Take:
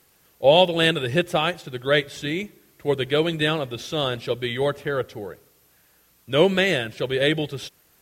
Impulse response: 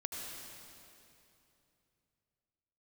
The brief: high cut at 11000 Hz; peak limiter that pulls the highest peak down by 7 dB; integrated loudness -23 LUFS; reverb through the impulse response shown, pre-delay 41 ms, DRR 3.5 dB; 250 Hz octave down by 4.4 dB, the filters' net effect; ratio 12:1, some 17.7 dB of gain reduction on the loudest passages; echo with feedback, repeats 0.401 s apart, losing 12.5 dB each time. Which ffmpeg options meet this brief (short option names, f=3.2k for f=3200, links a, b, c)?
-filter_complex "[0:a]lowpass=11k,equalizer=f=250:t=o:g=-7.5,acompressor=threshold=-29dB:ratio=12,alimiter=level_in=0.5dB:limit=-24dB:level=0:latency=1,volume=-0.5dB,aecho=1:1:401|802|1203:0.237|0.0569|0.0137,asplit=2[a][b];[1:a]atrim=start_sample=2205,adelay=41[c];[b][c]afir=irnorm=-1:irlink=0,volume=-4dB[d];[a][d]amix=inputs=2:normalize=0,volume=11.5dB"